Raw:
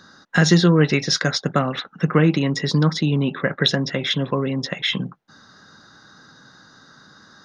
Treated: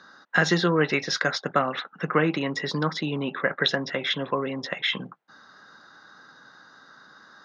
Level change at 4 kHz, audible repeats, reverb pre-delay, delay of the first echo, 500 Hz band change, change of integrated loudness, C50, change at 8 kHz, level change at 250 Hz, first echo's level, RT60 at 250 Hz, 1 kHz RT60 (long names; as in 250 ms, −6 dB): −5.5 dB, no echo audible, no reverb audible, no echo audible, −3.5 dB, −5.5 dB, no reverb audible, can't be measured, −8.5 dB, no echo audible, no reverb audible, no reverb audible